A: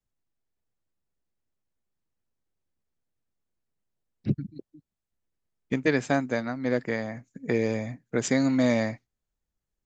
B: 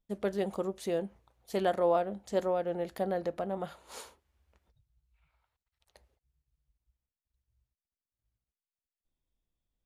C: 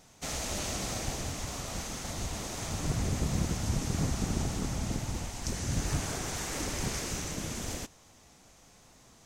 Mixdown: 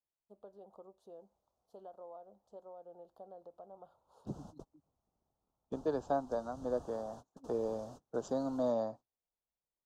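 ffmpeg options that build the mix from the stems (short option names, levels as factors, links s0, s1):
-filter_complex "[0:a]highpass=f=69:p=1,equalizer=f=110:t=o:w=0.47:g=-3,volume=0.794,asplit=2[s0][s1];[1:a]acompressor=threshold=0.0282:ratio=6,adelay=200,volume=0.251[s2];[2:a]adelay=850,volume=0.335[s3];[s1]apad=whole_len=445566[s4];[s3][s4]sidechaingate=range=0.0224:threshold=0.00794:ratio=16:detection=peak[s5];[s0][s2][s5]amix=inputs=3:normalize=0,asuperstop=centerf=2100:order=4:qfactor=0.62,acrossover=split=510 2700:gain=0.2 1 0.0891[s6][s7][s8];[s6][s7][s8]amix=inputs=3:normalize=0"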